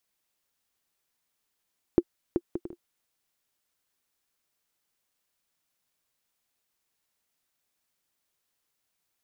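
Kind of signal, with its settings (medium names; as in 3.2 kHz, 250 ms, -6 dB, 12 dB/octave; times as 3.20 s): bouncing ball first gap 0.38 s, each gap 0.51, 347 Hz, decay 51 ms -8 dBFS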